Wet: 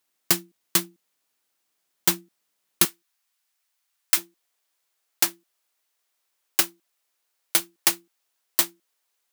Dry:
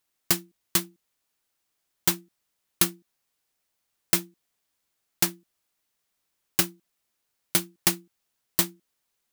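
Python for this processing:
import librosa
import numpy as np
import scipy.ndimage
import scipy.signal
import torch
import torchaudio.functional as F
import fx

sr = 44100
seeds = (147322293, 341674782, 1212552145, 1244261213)

y = fx.highpass(x, sr, hz=fx.steps((0.0, 170.0), (2.85, 960.0), (4.17, 450.0)), slope=12)
y = y * librosa.db_to_amplitude(2.5)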